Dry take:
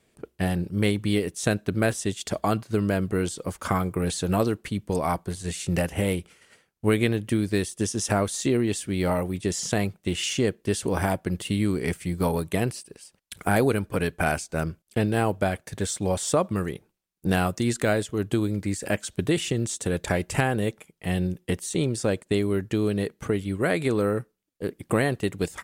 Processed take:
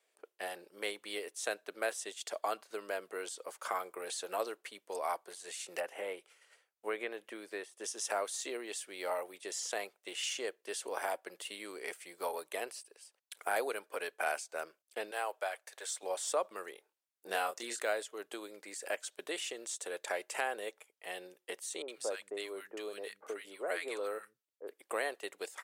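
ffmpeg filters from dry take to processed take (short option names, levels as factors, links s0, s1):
-filter_complex "[0:a]asettb=1/sr,asplit=3[s0][s1][s2];[s0]atrim=end=5.804[s3];[s1]atrim=start=5.8:end=7.84,asetpts=PTS-STARTPTS,afade=t=in:d=0.004:c=qsin,afade=t=out:st=2.036:d=0.004:c=qsin,acrossover=split=2600[s4][s5];[s5]acompressor=threshold=0.00398:ratio=4:attack=1:release=60[s6];[s4][s6]amix=inputs=2:normalize=0[s7];[s2]atrim=start=7.836[s8];[s3][s7]acrossfade=d=0.004:c1=hsin:c2=qsin[s9];[s9][s8]acrossfade=d=0.004:c1=qsin:c2=hsin,asettb=1/sr,asplit=3[s10][s11][s12];[s10]atrim=end=15.114[s13];[s11]atrim=start=15.11:end=16.03,asetpts=PTS-STARTPTS,afade=t=in:d=0.004:c=qsin,afade=t=out:st=0.916:d=0.004:c=qsin,highpass=580[s14];[s12]atrim=start=16.026[s15];[s13][s14]acrossfade=d=0.004:c1=hsin:c2=qsin[s16];[s16][s15]acrossfade=d=0.004:c1=qsin:c2=hsin,asettb=1/sr,asplit=3[s17][s18][s19];[s17]atrim=end=16.754[s20];[s18]atrim=start=16.75:end=17.8,asetpts=PTS-STARTPTS,afade=t=in:d=0.004:c=qsin,afade=t=out:st=1.046:d=0.004:c=qsin,asplit=2[s21][s22];[s22]adelay=26,volume=0.596[s23];[s21][s23]amix=inputs=2:normalize=0,atrim=end_sample=46305[s24];[s19]atrim=start=17.796[s25];[s20][s24]acrossfade=d=0.004:c1=hsin:c2=qsin[s26];[s26][s25]acrossfade=d=0.004:c1=qsin:c2=hsin,asettb=1/sr,asplit=3[s27][s28][s29];[s27]atrim=end=21.824[s30];[s28]atrim=start=21.82:end=24.68,asetpts=PTS-STARTPTS,afade=t=in:d=0.004:c=qsin,afade=t=out:st=2.856:d=0.004:c=qsin,acrossover=split=160|1200[s31][s32][s33];[s33]adelay=60[s34];[s31]adelay=150[s35];[s35][s32][s34]amix=inputs=3:normalize=0,atrim=end_sample=126126[s36];[s29]atrim=start=24.676[s37];[s30][s36]acrossfade=d=0.004:c1=hsin:c2=qsin[s38];[s38][s37]acrossfade=d=0.004:c1=qsin:c2=hsin,highpass=f=480:w=0.5412,highpass=f=480:w=1.3066,volume=0.376"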